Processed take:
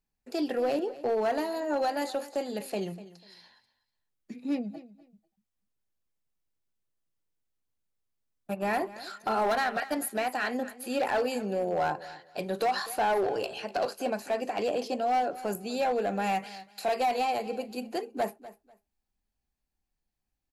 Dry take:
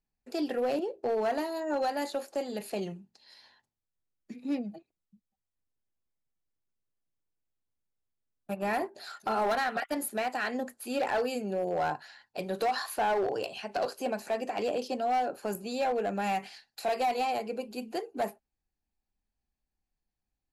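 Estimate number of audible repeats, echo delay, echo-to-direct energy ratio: 2, 246 ms, −17.0 dB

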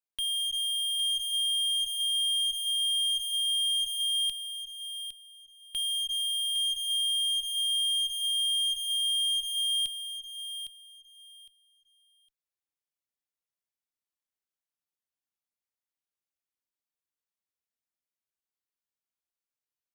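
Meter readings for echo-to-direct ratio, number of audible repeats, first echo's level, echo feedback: −9.5 dB, 2, −9.5 dB, 21%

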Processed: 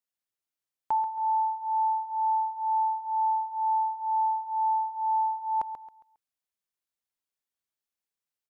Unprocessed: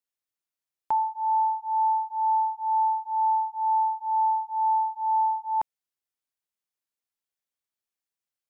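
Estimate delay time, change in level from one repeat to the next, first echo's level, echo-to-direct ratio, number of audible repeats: 136 ms, −9.5 dB, −10.5 dB, −10.0 dB, 3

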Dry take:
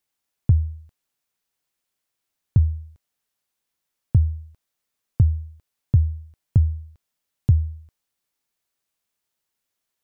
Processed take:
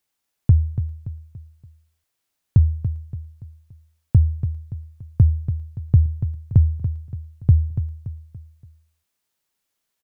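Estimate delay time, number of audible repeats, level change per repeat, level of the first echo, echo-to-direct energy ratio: 286 ms, 4, −7.5 dB, −10.0 dB, −9.0 dB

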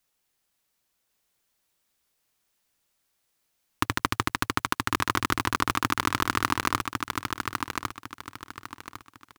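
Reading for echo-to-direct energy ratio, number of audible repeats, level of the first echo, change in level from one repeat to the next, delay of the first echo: −4.0 dB, 3, −4.5 dB, −10.5 dB, 1,103 ms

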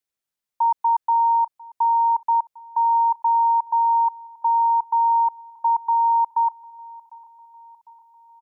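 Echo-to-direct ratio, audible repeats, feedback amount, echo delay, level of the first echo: −21.0 dB, 3, 58%, 752 ms, −22.5 dB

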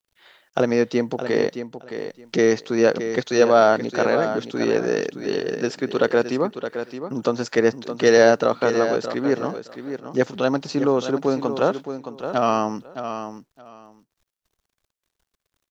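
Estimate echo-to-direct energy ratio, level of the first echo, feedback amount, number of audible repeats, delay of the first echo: −9.5 dB, −9.5 dB, 17%, 2, 618 ms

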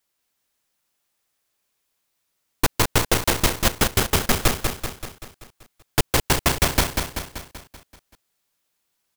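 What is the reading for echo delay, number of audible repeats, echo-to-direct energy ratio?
192 ms, 6, −3.5 dB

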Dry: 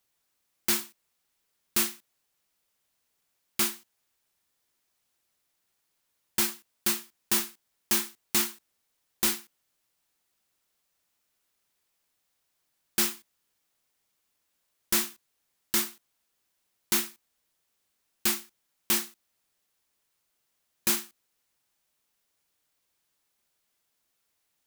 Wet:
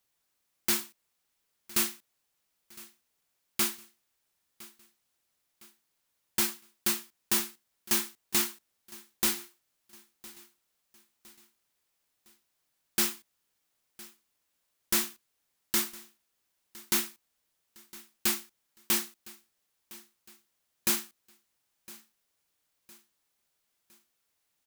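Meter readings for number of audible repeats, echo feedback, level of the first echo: 3, 46%, −21.0 dB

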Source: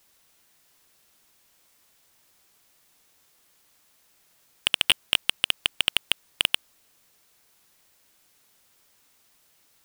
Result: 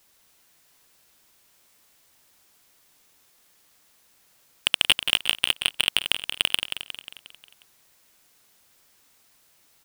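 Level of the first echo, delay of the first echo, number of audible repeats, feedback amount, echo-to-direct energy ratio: −8.0 dB, 179 ms, 6, 54%, −6.5 dB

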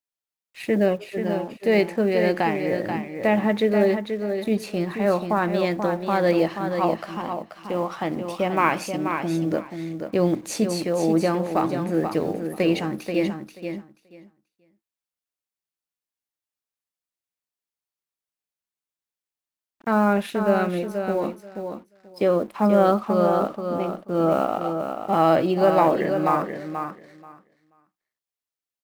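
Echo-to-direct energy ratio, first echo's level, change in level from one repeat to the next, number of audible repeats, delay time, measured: −7.0 dB, −7.0 dB, −16.0 dB, 2, 483 ms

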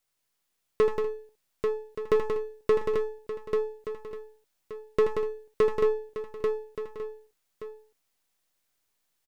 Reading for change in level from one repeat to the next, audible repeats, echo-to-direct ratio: repeats not evenly spaced, 9, −1.0 dB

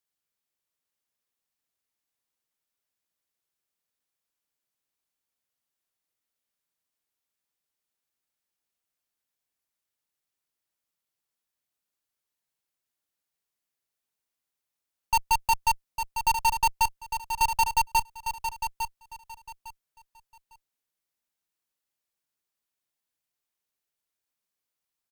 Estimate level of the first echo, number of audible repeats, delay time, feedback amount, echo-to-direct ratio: −8.0 dB, 3, 854 ms, 23%, −8.0 dB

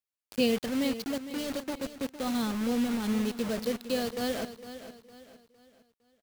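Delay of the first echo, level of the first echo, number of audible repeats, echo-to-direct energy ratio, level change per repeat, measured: 458 ms, −12.5 dB, 3, −12.0 dB, −8.5 dB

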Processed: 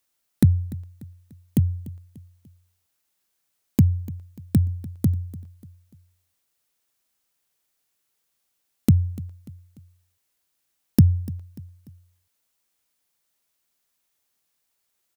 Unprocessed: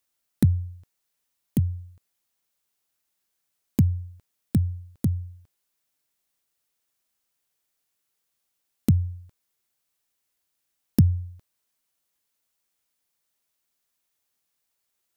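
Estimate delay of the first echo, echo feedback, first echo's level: 294 ms, 44%, −19.0 dB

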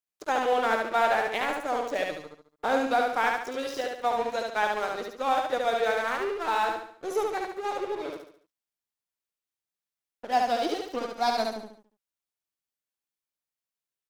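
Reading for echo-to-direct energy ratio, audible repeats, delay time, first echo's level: −2.0 dB, 5, 71 ms, −3.0 dB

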